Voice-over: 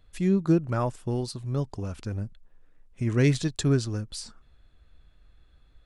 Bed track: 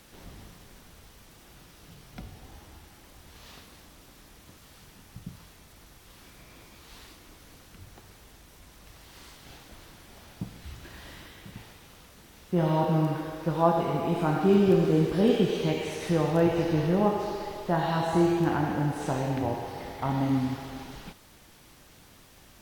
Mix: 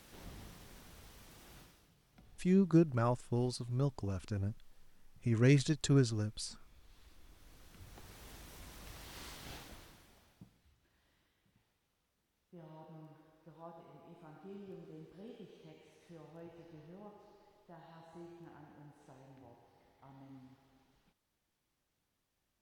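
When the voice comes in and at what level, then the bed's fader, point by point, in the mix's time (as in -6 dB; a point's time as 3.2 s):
2.25 s, -5.5 dB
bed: 1.59 s -4.5 dB
1.93 s -20 dB
6.92 s -20 dB
8.31 s -0.5 dB
9.56 s -0.5 dB
10.76 s -29.5 dB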